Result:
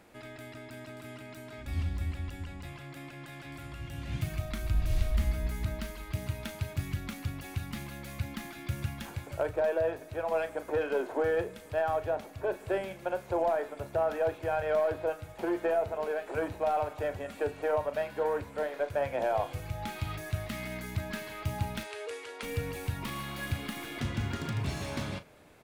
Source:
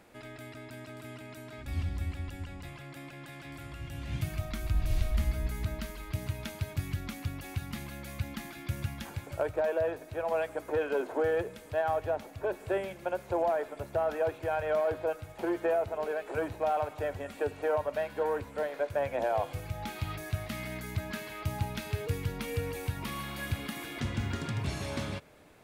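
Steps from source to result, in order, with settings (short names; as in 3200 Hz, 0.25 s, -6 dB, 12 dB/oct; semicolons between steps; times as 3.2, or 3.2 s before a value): tracing distortion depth 0.07 ms; 21.83–22.43 elliptic band-pass 410–9500 Hz, stop band 40 dB; doubler 37 ms -12 dB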